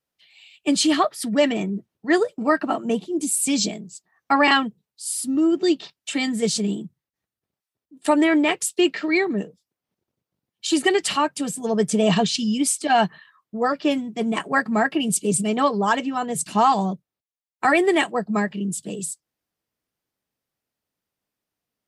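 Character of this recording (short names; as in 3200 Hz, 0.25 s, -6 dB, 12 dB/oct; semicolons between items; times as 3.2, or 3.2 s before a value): noise floor -89 dBFS; spectral tilt -3.5 dB/oct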